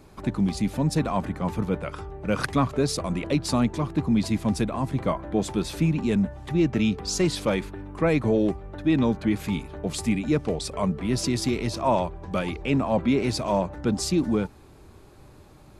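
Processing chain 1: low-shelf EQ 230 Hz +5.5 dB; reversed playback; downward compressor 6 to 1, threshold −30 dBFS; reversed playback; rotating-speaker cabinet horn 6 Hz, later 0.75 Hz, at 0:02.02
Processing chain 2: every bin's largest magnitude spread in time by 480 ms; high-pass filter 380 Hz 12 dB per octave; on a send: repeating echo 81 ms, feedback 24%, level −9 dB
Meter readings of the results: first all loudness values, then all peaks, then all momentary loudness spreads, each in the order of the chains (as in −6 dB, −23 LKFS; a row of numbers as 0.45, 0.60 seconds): −36.0, −19.5 LKFS; −21.5, −3.5 dBFS; 5, 7 LU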